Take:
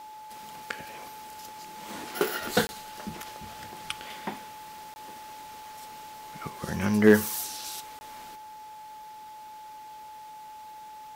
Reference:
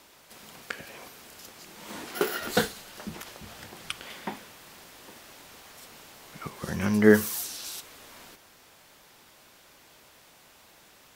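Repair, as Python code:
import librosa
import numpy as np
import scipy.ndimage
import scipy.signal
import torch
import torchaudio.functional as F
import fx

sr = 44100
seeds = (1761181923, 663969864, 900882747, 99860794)

y = fx.fix_declip(x, sr, threshold_db=-7.0)
y = fx.notch(y, sr, hz=860.0, q=30.0)
y = fx.fix_interpolate(y, sr, at_s=(2.67, 4.94, 7.99), length_ms=20.0)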